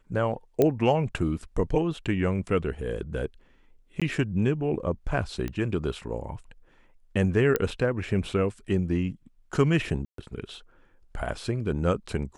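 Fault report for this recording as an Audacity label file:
0.620000	0.620000	click −10 dBFS
4.000000	4.020000	drop-out 16 ms
5.480000	5.480000	click −19 dBFS
7.560000	7.560000	click −10 dBFS
10.050000	10.180000	drop-out 133 ms

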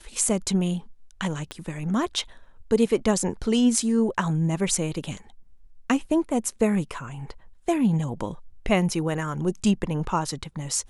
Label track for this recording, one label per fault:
1.510000	1.510000	click −19 dBFS

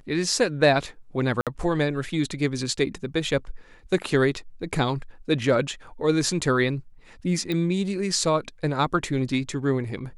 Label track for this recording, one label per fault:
1.410000	1.470000	drop-out 57 ms
7.520000	7.520000	click −16 dBFS

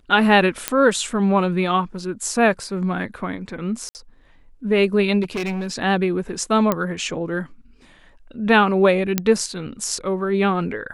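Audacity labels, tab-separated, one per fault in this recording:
0.680000	0.680000	click −2 dBFS
3.890000	3.950000	drop-out 59 ms
5.220000	5.730000	clipping −22 dBFS
6.720000	6.720000	click −6 dBFS
9.180000	9.180000	click −3 dBFS

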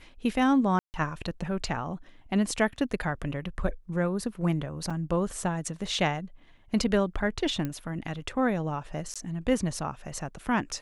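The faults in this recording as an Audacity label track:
0.790000	0.940000	drop-out 149 ms
4.900000	4.900000	drop-out 4.7 ms
7.650000	7.650000	click −19 dBFS
9.140000	9.160000	drop-out 16 ms

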